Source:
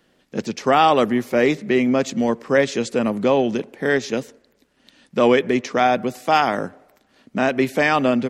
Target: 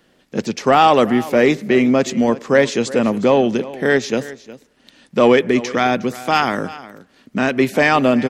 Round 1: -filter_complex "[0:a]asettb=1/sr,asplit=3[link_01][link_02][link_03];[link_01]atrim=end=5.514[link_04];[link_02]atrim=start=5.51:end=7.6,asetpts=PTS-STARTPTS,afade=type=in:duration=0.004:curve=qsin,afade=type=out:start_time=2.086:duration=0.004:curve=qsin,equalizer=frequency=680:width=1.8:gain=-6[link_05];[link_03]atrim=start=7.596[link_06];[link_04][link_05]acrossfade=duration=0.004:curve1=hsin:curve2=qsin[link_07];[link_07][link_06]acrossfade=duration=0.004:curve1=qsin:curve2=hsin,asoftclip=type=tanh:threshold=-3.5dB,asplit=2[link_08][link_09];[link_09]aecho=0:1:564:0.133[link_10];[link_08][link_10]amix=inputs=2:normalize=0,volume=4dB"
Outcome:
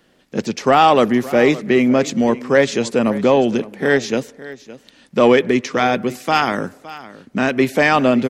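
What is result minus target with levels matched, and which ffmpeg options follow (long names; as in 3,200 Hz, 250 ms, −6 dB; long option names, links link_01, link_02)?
echo 203 ms late
-filter_complex "[0:a]asettb=1/sr,asplit=3[link_01][link_02][link_03];[link_01]atrim=end=5.514[link_04];[link_02]atrim=start=5.51:end=7.6,asetpts=PTS-STARTPTS,afade=type=in:duration=0.004:curve=qsin,afade=type=out:start_time=2.086:duration=0.004:curve=qsin,equalizer=frequency=680:width=1.8:gain=-6[link_05];[link_03]atrim=start=7.596[link_06];[link_04][link_05]acrossfade=duration=0.004:curve1=hsin:curve2=qsin[link_07];[link_07][link_06]acrossfade=duration=0.004:curve1=qsin:curve2=hsin,asoftclip=type=tanh:threshold=-3.5dB,asplit=2[link_08][link_09];[link_09]aecho=0:1:361:0.133[link_10];[link_08][link_10]amix=inputs=2:normalize=0,volume=4dB"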